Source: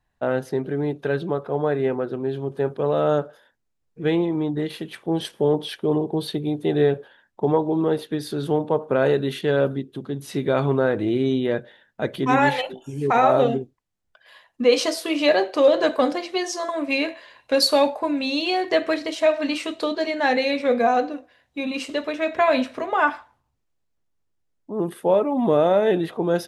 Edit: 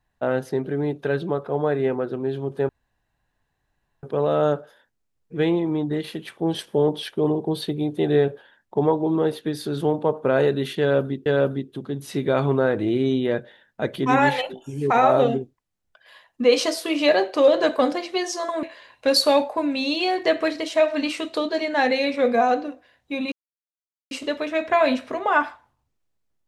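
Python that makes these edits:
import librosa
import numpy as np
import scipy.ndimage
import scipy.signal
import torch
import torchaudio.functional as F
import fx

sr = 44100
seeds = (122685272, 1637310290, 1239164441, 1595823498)

y = fx.edit(x, sr, fx.insert_room_tone(at_s=2.69, length_s=1.34),
    fx.repeat(start_s=9.46, length_s=0.46, count=2),
    fx.cut(start_s=16.83, length_s=0.26),
    fx.insert_silence(at_s=21.78, length_s=0.79), tone=tone)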